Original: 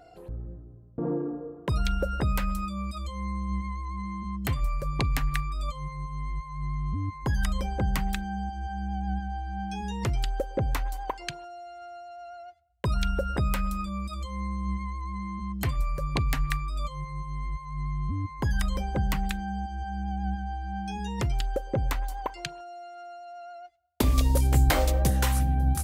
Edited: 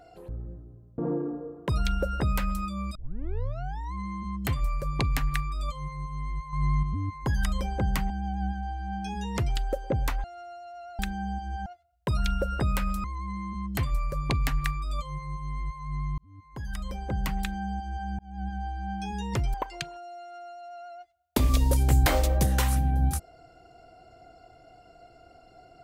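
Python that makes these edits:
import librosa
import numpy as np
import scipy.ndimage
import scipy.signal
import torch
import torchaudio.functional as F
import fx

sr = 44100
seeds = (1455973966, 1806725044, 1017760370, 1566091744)

y = fx.edit(x, sr, fx.tape_start(start_s=2.95, length_s=0.99),
    fx.clip_gain(start_s=6.53, length_s=0.3, db=6.5),
    fx.move(start_s=8.1, length_s=0.67, to_s=12.43),
    fx.cut(start_s=10.91, length_s=0.77),
    fx.cut(start_s=13.81, length_s=1.09),
    fx.fade_in_span(start_s=18.04, length_s=1.38),
    fx.fade_in_span(start_s=20.05, length_s=0.38),
    fx.cut(start_s=21.4, length_s=0.78), tone=tone)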